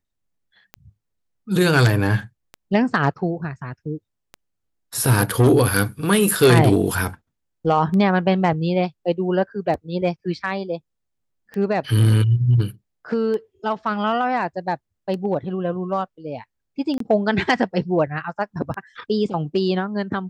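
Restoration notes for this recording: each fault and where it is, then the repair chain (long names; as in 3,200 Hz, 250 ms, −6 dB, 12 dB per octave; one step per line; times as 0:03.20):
scratch tick 33 1/3 rpm −19 dBFS
0:16.98–0:17.00: drop-out 23 ms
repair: click removal
repair the gap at 0:16.98, 23 ms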